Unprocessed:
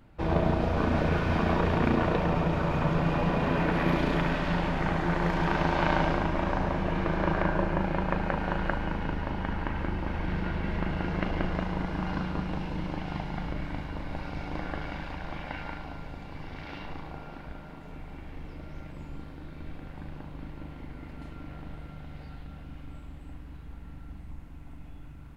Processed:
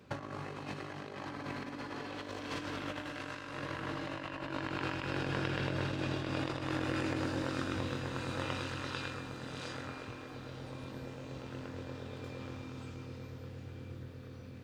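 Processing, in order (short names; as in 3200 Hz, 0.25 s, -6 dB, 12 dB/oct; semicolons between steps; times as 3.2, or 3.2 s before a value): speed mistake 45 rpm record played at 78 rpm; negative-ratio compressor -31 dBFS, ratio -0.5; HPF 77 Hz 24 dB/oct; gain -5 dB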